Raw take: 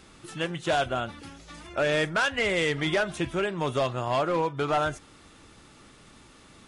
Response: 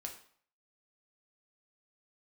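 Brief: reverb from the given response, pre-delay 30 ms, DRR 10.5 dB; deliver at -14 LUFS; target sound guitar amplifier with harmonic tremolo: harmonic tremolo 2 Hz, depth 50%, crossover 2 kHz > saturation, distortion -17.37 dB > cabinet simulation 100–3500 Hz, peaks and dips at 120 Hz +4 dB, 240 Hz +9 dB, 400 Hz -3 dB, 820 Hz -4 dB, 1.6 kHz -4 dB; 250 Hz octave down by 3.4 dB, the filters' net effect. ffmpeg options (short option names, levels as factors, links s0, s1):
-filter_complex "[0:a]equalizer=f=250:t=o:g=-8,asplit=2[s0][s1];[1:a]atrim=start_sample=2205,adelay=30[s2];[s1][s2]afir=irnorm=-1:irlink=0,volume=0.398[s3];[s0][s3]amix=inputs=2:normalize=0,acrossover=split=2000[s4][s5];[s4]aeval=exprs='val(0)*(1-0.5/2+0.5/2*cos(2*PI*2*n/s))':c=same[s6];[s5]aeval=exprs='val(0)*(1-0.5/2-0.5/2*cos(2*PI*2*n/s))':c=same[s7];[s6][s7]amix=inputs=2:normalize=0,asoftclip=threshold=0.0708,highpass=100,equalizer=f=120:t=q:w=4:g=4,equalizer=f=240:t=q:w=4:g=9,equalizer=f=400:t=q:w=4:g=-3,equalizer=f=820:t=q:w=4:g=-4,equalizer=f=1600:t=q:w=4:g=-4,lowpass=f=3500:w=0.5412,lowpass=f=3500:w=1.3066,volume=9.44"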